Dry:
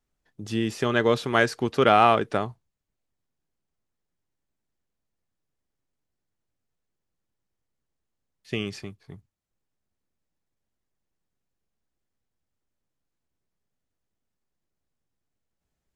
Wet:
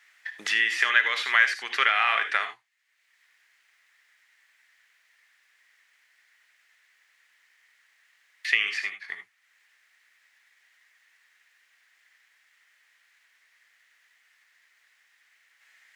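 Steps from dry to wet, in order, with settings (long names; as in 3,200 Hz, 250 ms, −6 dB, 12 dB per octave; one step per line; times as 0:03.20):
low-pass filter 3,500 Hz 6 dB per octave
brickwall limiter −10.5 dBFS, peak gain reduction 6 dB
high-pass with resonance 1,900 Hz, resonance Q 4.7
reverb whose tail is shaped and stops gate 100 ms rising, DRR 8 dB
multiband upward and downward compressor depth 70%
level +4.5 dB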